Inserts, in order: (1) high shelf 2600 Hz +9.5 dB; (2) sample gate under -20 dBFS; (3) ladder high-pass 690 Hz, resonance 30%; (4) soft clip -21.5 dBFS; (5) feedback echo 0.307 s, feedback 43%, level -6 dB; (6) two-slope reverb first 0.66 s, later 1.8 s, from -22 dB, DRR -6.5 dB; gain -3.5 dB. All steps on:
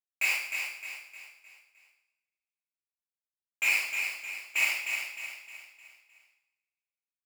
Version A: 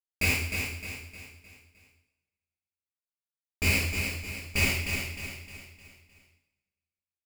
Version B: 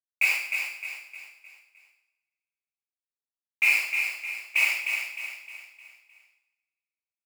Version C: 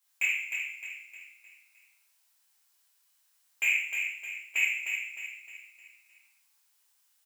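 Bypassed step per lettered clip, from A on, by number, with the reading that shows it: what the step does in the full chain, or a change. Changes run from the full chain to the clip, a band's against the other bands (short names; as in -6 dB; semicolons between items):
3, 500 Hz band +11.0 dB; 4, distortion -8 dB; 2, distortion -10 dB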